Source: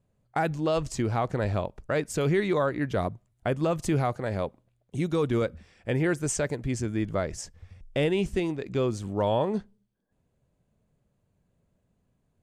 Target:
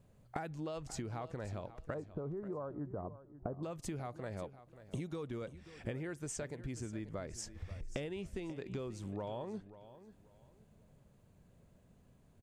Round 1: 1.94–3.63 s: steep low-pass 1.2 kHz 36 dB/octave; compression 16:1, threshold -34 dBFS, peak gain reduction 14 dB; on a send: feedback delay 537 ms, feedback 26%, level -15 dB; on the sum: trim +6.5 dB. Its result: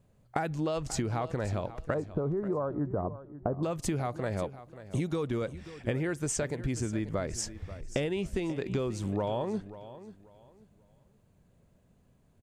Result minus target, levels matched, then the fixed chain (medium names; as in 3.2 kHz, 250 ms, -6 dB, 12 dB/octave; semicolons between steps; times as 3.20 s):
compression: peak gain reduction -10.5 dB
1.94–3.63 s: steep low-pass 1.2 kHz 36 dB/octave; compression 16:1, threshold -45 dBFS, peak gain reduction 24.5 dB; on a send: feedback delay 537 ms, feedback 26%, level -15 dB; on the sum: trim +6.5 dB